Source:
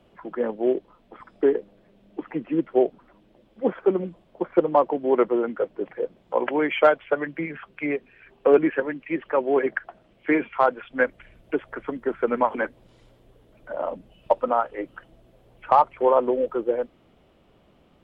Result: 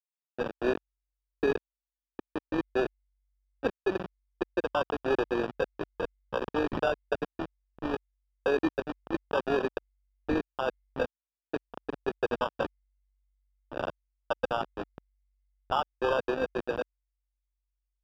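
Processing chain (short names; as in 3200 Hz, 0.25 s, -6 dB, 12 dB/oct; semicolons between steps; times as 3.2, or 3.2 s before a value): level-crossing sampler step -21.5 dBFS; AM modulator 48 Hz, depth 25%; limiter -15.5 dBFS, peak gain reduction 9 dB; Bessel high-pass 300 Hz, order 2; sample-and-hold 21×; air absorption 310 m; mismatched tape noise reduction decoder only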